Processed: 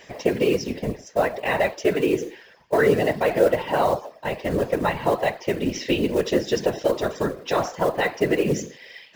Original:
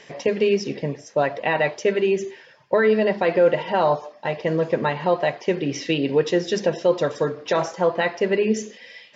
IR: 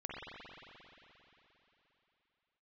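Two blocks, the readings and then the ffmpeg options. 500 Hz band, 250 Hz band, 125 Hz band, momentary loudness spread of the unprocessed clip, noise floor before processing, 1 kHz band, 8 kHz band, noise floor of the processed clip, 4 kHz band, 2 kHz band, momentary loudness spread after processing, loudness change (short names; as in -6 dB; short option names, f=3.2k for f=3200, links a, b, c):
-1.5 dB, 0.0 dB, 0.0 dB, 7 LU, -49 dBFS, -0.5 dB, n/a, -50 dBFS, -0.5 dB, -1.0 dB, 8 LU, -1.0 dB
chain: -af "acontrast=37,acrusher=bits=6:mode=log:mix=0:aa=0.000001,afftfilt=real='hypot(re,im)*cos(2*PI*random(0))':imag='hypot(re,im)*sin(2*PI*random(1))':win_size=512:overlap=0.75"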